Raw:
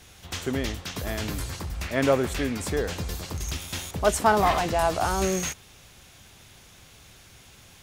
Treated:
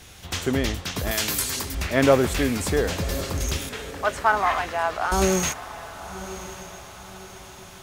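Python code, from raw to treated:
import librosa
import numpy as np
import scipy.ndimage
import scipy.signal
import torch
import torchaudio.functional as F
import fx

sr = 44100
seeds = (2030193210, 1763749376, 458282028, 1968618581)

y = fx.tilt_eq(x, sr, slope=3.0, at=(1.11, 1.75))
y = fx.bandpass_q(y, sr, hz=1500.0, q=1.2, at=(3.69, 5.12))
y = fx.echo_diffused(y, sr, ms=1094, feedback_pct=43, wet_db=-14.0)
y = y * librosa.db_to_amplitude(4.5)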